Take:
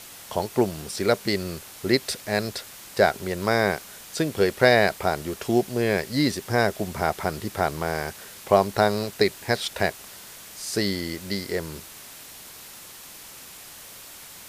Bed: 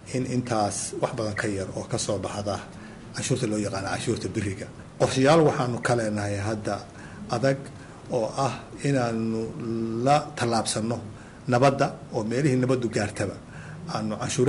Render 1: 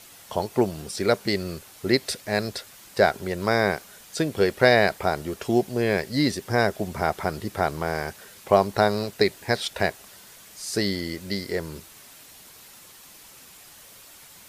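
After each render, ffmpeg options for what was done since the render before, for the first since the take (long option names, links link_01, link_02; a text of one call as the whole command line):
ffmpeg -i in.wav -af "afftdn=noise_reduction=6:noise_floor=-44" out.wav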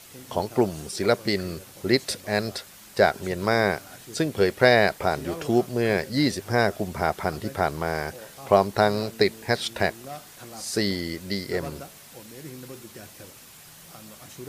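ffmpeg -i in.wav -i bed.wav -filter_complex "[1:a]volume=-18.5dB[link_01];[0:a][link_01]amix=inputs=2:normalize=0" out.wav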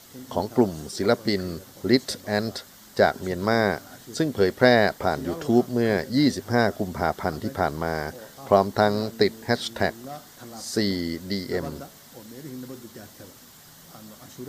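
ffmpeg -i in.wav -af "equalizer=frequency=250:width_type=o:width=0.33:gain=7,equalizer=frequency=2500:width_type=o:width=0.33:gain=-10,equalizer=frequency=10000:width_type=o:width=0.33:gain=-8" out.wav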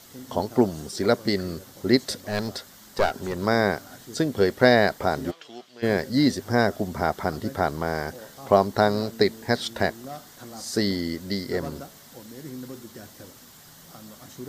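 ffmpeg -i in.wav -filter_complex "[0:a]asettb=1/sr,asplit=3[link_01][link_02][link_03];[link_01]atrim=end=2.214[link_04];[link_02]atrim=start=2.21:end=3.39,asetpts=PTS-STARTPTS,afade=type=in:duration=0.004:curve=qsin,afade=type=out:start_time=1.176:duration=0.004:curve=qsin,aeval=exprs='clip(val(0),-1,0.0631)':channel_layout=same[link_05];[link_03]atrim=start=3.386[link_06];[link_04][link_05]acrossfade=duration=0.004:curve1=hsin:curve2=qsin[link_07];[link_07][link_06]acrossfade=duration=0.004:curve1=qsin:curve2=hsin,asplit=3[link_08][link_09][link_10];[link_08]afade=type=out:start_time=5.3:duration=0.02[link_11];[link_09]bandpass=frequency=2900:width_type=q:width=1.8,afade=type=in:start_time=5.3:duration=0.02,afade=type=out:start_time=5.82:duration=0.02[link_12];[link_10]afade=type=in:start_time=5.82:duration=0.02[link_13];[link_11][link_12][link_13]amix=inputs=3:normalize=0" out.wav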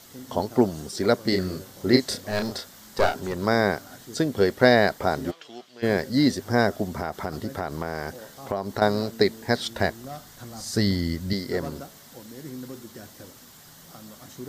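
ffmpeg -i in.wav -filter_complex "[0:a]asettb=1/sr,asplit=3[link_01][link_02][link_03];[link_01]atrim=end=1.294[link_04];[link_02]atrim=start=1.29:end=3.2,asetpts=PTS-STARTPTS,afade=type=in:duration=0.004:curve=qsin,afade=type=out:start_time=1.906:duration=0.004:curve=qsin,asplit=2[link_05][link_06];[link_06]adelay=32,volume=-5dB[link_07];[link_05][link_07]amix=inputs=2:normalize=0,atrim=end_sample=84231[link_08];[link_03]atrim=start=3.196[link_09];[link_04][link_08]acrossfade=duration=0.004:curve1=hsin:curve2=qsin[link_10];[link_10][link_09]acrossfade=duration=0.004:curve1=qsin:curve2=hsin,asettb=1/sr,asplit=3[link_11][link_12][link_13];[link_11]atrim=end=6.864[link_14];[link_12]atrim=start=6.86:end=8.82,asetpts=PTS-STARTPTS,afade=type=in:duration=0.004:curve=qsin,afade=type=out:start_time=1.956:duration=0.004:curve=qsin,acompressor=threshold=-24dB:ratio=4:attack=3.2:release=140:knee=1:detection=peak[link_15];[link_13]atrim=start=8.816[link_16];[link_14][link_15]acrossfade=duration=0.004:curve1=hsin:curve2=qsin[link_17];[link_17][link_16]acrossfade=duration=0.004:curve1=qsin:curve2=hsin,asettb=1/sr,asplit=3[link_18][link_19][link_20];[link_18]atrim=end=9.534[link_21];[link_19]atrim=start=9.53:end=11.33,asetpts=PTS-STARTPTS,afade=type=in:duration=0.004:curve=qsin,afade=type=out:start_time=1.796:duration=0.004:curve=qsin,asubboost=boost=8:cutoff=160[link_22];[link_20]atrim=start=11.326[link_23];[link_21][link_22]acrossfade=duration=0.004:curve1=hsin:curve2=qsin[link_24];[link_24][link_23]acrossfade=duration=0.004:curve1=qsin:curve2=hsin" out.wav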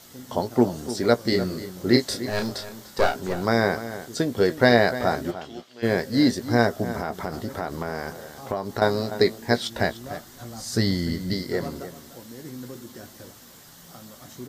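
ffmpeg -i in.wav -filter_complex "[0:a]asplit=2[link_01][link_02];[link_02]adelay=17,volume=-9.5dB[link_03];[link_01][link_03]amix=inputs=2:normalize=0,asplit=2[link_04][link_05];[link_05]adelay=297.4,volume=-13dB,highshelf=frequency=4000:gain=-6.69[link_06];[link_04][link_06]amix=inputs=2:normalize=0" out.wav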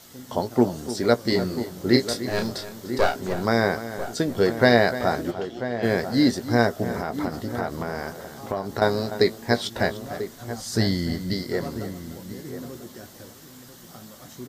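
ffmpeg -i in.wav -filter_complex "[0:a]asplit=2[link_01][link_02];[link_02]adelay=991.3,volume=-11dB,highshelf=frequency=4000:gain=-22.3[link_03];[link_01][link_03]amix=inputs=2:normalize=0" out.wav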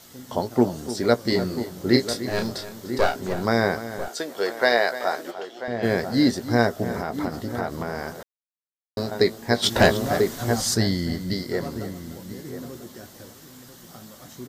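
ffmpeg -i in.wav -filter_complex "[0:a]asettb=1/sr,asplit=3[link_01][link_02][link_03];[link_01]atrim=end=4.084[link_04];[link_02]atrim=start=4.08:end=5.68,asetpts=PTS-STARTPTS,afade=type=in:duration=0.004:curve=qsin,afade=type=out:start_time=1.596:duration=0.004:curve=qsin,highpass=520[link_05];[link_03]atrim=start=5.676[link_06];[link_04][link_05]acrossfade=duration=0.004:curve1=hsin:curve2=qsin[link_07];[link_07][link_06]acrossfade=duration=0.004:curve1=qsin:curve2=hsin,asplit=3[link_08][link_09][link_10];[link_08]afade=type=out:start_time=9.62:duration=0.02[link_11];[link_09]aeval=exprs='0.398*sin(PI/2*2*val(0)/0.398)':channel_layout=same,afade=type=in:start_time=9.62:duration=0.02,afade=type=out:start_time=10.73:duration=0.02[link_12];[link_10]afade=type=in:start_time=10.73:duration=0.02[link_13];[link_11][link_12][link_13]amix=inputs=3:normalize=0,asplit=3[link_14][link_15][link_16];[link_14]atrim=end=8.23,asetpts=PTS-STARTPTS,afade=type=out:start_time=8.226:duration=0.004:curve=hsin[link_17];[link_15]atrim=start=8.23:end=8.97,asetpts=PTS-STARTPTS,volume=0[link_18];[link_16]atrim=start=8.97,asetpts=PTS-STARTPTS,afade=type=in:duration=0.004:curve=hsin[link_19];[link_17][link_18][link_19]concat=n=3:v=0:a=1" out.wav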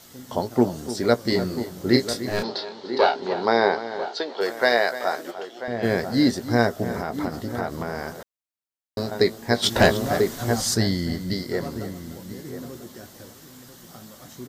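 ffmpeg -i in.wav -filter_complex "[0:a]asplit=3[link_01][link_02][link_03];[link_01]afade=type=out:start_time=2.42:duration=0.02[link_04];[link_02]highpass=270,equalizer=frequency=420:width_type=q:width=4:gain=6,equalizer=frequency=870:width_type=q:width=4:gain=10,equalizer=frequency=3000:width_type=q:width=4:gain=3,equalizer=frequency=4200:width_type=q:width=4:gain=9,lowpass=frequency=4800:width=0.5412,lowpass=frequency=4800:width=1.3066,afade=type=in:start_time=2.42:duration=0.02,afade=type=out:start_time=4.4:duration=0.02[link_05];[link_03]afade=type=in:start_time=4.4:duration=0.02[link_06];[link_04][link_05][link_06]amix=inputs=3:normalize=0" out.wav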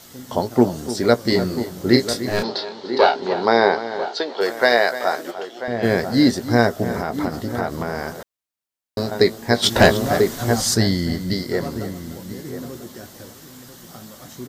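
ffmpeg -i in.wav -af "volume=4dB,alimiter=limit=-1dB:level=0:latency=1" out.wav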